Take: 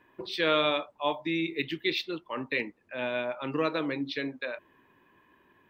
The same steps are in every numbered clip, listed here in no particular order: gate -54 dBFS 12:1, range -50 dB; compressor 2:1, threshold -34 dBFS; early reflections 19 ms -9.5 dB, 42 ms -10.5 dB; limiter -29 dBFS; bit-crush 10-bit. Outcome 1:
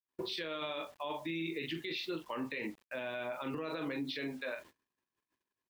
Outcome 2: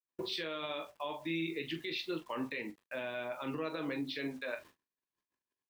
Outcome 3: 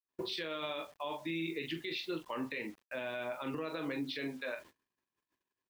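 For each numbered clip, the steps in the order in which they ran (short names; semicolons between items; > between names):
early reflections > bit-crush > limiter > compressor > gate; bit-crush > compressor > gate > limiter > early reflections; compressor > early reflections > bit-crush > limiter > gate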